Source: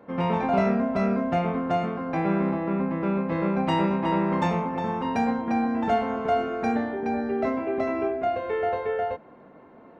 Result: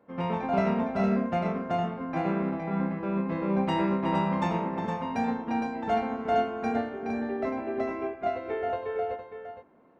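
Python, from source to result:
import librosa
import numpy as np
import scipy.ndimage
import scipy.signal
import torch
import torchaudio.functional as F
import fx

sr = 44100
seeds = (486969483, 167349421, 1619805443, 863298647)

y = x + 10.0 ** (-5.5 / 20.0) * np.pad(x, (int(462 * sr / 1000.0), 0))[:len(x)]
y = fx.upward_expand(y, sr, threshold_db=-37.0, expansion=1.5)
y = F.gain(torch.from_numpy(y), -2.5).numpy()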